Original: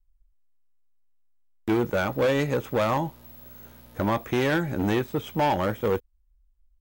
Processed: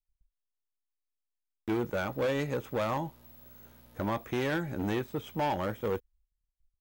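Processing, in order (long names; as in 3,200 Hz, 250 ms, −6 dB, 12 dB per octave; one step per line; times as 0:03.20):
noise gate −59 dBFS, range −17 dB
level −7 dB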